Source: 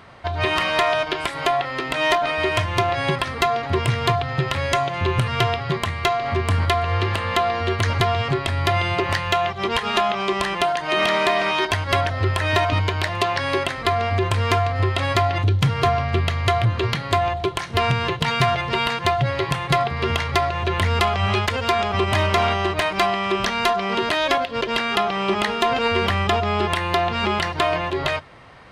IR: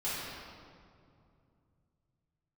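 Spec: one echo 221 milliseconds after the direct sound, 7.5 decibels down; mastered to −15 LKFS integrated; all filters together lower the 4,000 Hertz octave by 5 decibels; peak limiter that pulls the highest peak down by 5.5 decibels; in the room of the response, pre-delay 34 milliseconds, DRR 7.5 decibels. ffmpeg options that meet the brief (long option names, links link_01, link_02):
-filter_complex "[0:a]equalizer=frequency=4000:width_type=o:gain=-7,alimiter=limit=-13.5dB:level=0:latency=1,aecho=1:1:221:0.422,asplit=2[link_01][link_02];[1:a]atrim=start_sample=2205,adelay=34[link_03];[link_02][link_03]afir=irnorm=-1:irlink=0,volume=-14dB[link_04];[link_01][link_04]amix=inputs=2:normalize=0,volume=7dB"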